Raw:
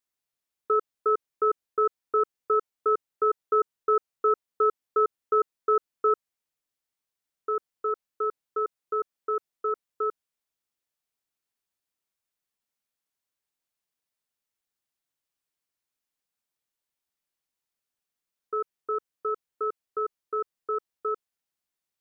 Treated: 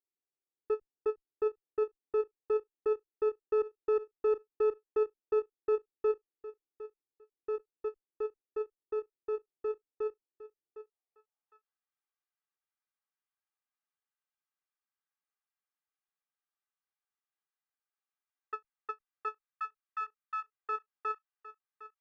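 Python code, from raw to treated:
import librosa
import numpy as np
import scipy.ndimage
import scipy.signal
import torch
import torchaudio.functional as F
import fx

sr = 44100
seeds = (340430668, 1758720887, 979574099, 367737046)

p1 = fx.lower_of_two(x, sr, delay_ms=2.5)
p2 = fx.ellip_bandstop(p1, sr, low_hz=140.0, high_hz=1000.0, order=3, stop_db=40, at=(19.47, 20.55))
p3 = p2 + fx.echo_feedback(p2, sr, ms=758, feedback_pct=18, wet_db=-15.0, dry=0)
p4 = fx.filter_sweep_bandpass(p3, sr, from_hz=320.0, to_hz=1300.0, start_s=10.52, end_s=11.72, q=1.5)
y = fx.end_taper(p4, sr, db_per_s=540.0)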